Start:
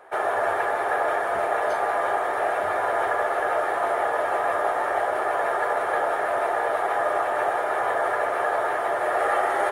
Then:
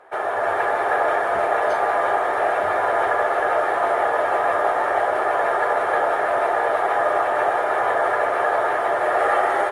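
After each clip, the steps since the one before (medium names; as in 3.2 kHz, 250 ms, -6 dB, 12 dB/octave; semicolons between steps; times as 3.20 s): treble shelf 10 kHz -11 dB; level rider gain up to 4 dB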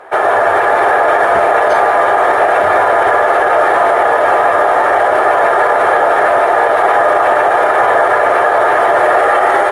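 loudness maximiser +14.5 dB; trim -1 dB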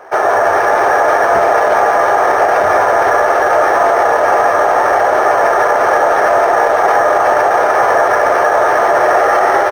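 speakerphone echo 310 ms, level -13 dB; decimation joined by straight lines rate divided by 6×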